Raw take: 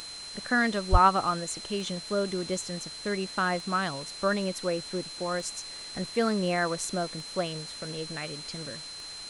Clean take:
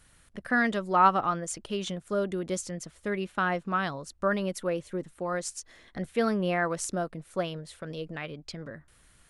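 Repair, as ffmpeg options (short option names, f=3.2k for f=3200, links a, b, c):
-filter_complex "[0:a]adeclick=t=4,bandreject=f=4.1k:w=30,asplit=3[a][b][c];[a]afade=t=out:st=0.91:d=0.02[d];[b]highpass=f=140:w=0.5412,highpass=f=140:w=1.3066,afade=t=in:st=0.91:d=0.02,afade=t=out:st=1.03:d=0.02[e];[c]afade=t=in:st=1.03:d=0.02[f];[d][e][f]amix=inputs=3:normalize=0,afftdn=nr=18:nf=-42"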